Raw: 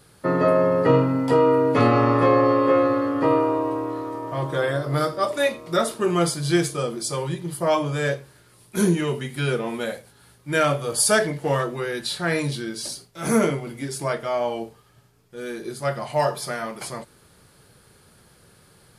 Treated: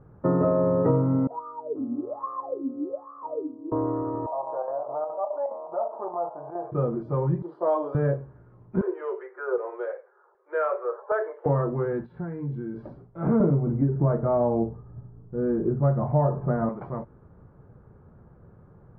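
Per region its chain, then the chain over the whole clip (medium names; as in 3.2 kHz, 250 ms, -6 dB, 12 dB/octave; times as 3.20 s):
1.27–3.72 s: hum notches 60/120/180/240/300/360/420 Hz + wah-wah 1.2 Hz 240–1200 Hz, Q 21
4.26–6.72 s: square tremolo 4.8 Hz, depth 60%, duty 75% + Butterworth band-pass 770 Hz, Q 2.4 + level flattener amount 50%
7.42–7.95 s: high-pass 370 Hz 24 dB/octave + resonant high shelf 3.2 kHz +10 dB, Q 3
8.81–11.46 s: rippled Chebyshev high-pass 360 Hz, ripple 6 dB + distance through air 82 m + LFO low-pass saw down 1.3 Hz 920–7100 Hz
12.04–12.76 s: peaking EQ 860 Hz -5 dB 1.6 oct + compression 10:1, threshold -30 dBFS + comb of notches 610 Hz
13.40–16.69 s: inverse Chebyshev low-pass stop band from 10 kHz, stop band 80 dB + bass shelf 430 Hz +10.5 dB
whole clip: low-pass 1.2 kHz 24 dB/octave; bass shelf 230 Hz +9 dB; compression 4:1, threshold -18 dBFS; trim -1 dB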